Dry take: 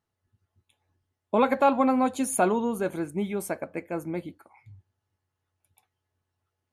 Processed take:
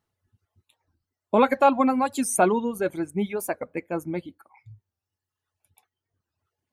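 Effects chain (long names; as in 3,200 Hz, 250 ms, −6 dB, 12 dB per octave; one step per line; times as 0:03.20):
reverb reduction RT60 1.4 s
wow of a warped record 45 rpm, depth 160 cents
level +3.5 dB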